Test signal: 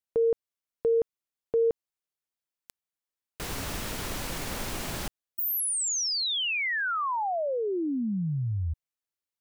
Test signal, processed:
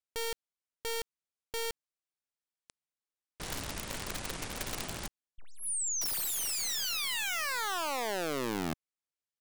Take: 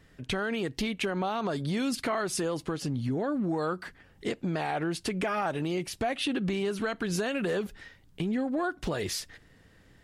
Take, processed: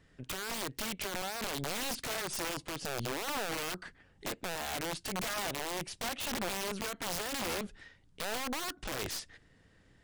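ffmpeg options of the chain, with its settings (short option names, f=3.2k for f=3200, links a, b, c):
-af "aeval=exprs='0.126*(cos(1*acos(clip(val(0)/0.126,-1,1)))-cos(1*PI/2))+0.0251*(cos(4*acos(clip(val(0)/0.126,-1,1)))-cos(4*PI/2))+0.00178*(cos(7*acos(clip(val(0)/0.126,-1,1)))-cos(7*PI/2))':c=same,aresample=22050,aresample=44100,aeval=exprs='(mod(15*val(0)+1,2)-1)/15':c=same,volume=-4.5dB"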